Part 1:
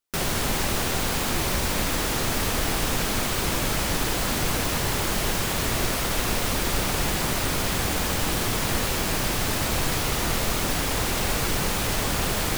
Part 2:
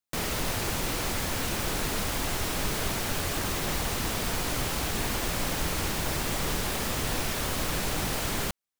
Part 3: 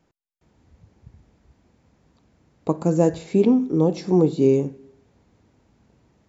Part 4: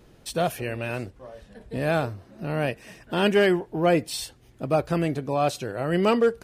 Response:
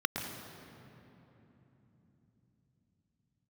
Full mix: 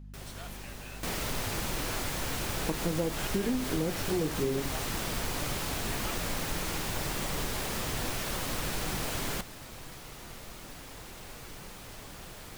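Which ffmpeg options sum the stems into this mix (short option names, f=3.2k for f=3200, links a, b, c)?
-filter_complex "[0:a]volume=-16.5dB[a];[1:a]adelay=900,volume=0.5dB[b];[2:a]aeval=exprs='val(0)+0.0158*(sin(2*PI*50*n/s)+sin(2*PI*2*50*n/s)/2+sin(2*PI*3*50*n/s)/3+sin(2*PI*4*50*n/s)/4+sin(2*PI*5*50*n/s)/5)':c=same,volume=-4.5dB[c];[3:a]highpass=1.2k,volume=-10.5dB[d];[a][b][c][d]amix=inputs=4:normalize=0,flanger=delay=5.2:depth=3.3:regen=-63:speed=1.8:shape=triangular,acompressor=threshold=-26dB:ratio=6"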